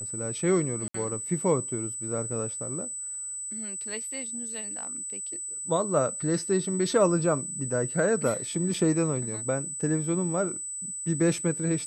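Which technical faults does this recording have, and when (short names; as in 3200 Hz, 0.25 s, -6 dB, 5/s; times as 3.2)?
tone 8000 Hz -33 dBFS
0.88–0.94 gap 64 ms
8.74 gap 2.8 ms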